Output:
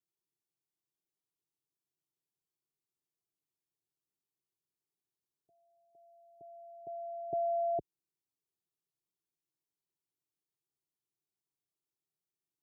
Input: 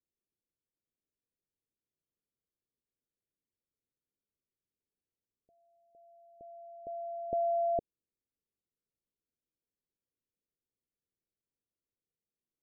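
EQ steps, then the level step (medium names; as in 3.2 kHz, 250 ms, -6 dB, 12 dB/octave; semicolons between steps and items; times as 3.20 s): high-pass 57 Hz; static phaser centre 350 Hz, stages 8; 0.0 dB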